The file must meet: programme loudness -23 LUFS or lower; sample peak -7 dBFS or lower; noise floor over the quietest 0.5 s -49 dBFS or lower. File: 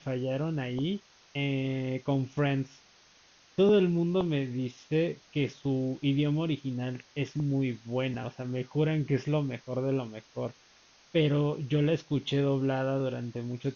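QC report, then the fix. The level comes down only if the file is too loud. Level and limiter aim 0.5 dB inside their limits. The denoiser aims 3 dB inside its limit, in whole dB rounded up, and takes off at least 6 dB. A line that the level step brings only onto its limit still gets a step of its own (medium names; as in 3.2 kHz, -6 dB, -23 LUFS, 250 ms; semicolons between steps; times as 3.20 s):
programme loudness -30.5 LUFS: pass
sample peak -14.0 dBFS: pass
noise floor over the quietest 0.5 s -60 dBFS: pass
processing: none needed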